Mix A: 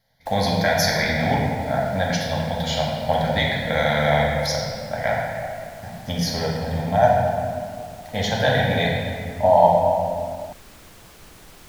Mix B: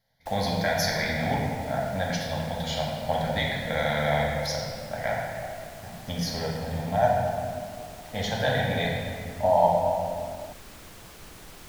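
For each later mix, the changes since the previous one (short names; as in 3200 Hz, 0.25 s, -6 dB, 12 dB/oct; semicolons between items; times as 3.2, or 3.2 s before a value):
speech -6.0 dB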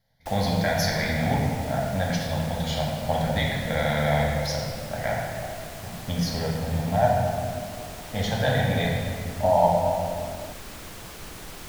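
speech: add low shelf 250 Hz +6.5 dB; background +6.0 dB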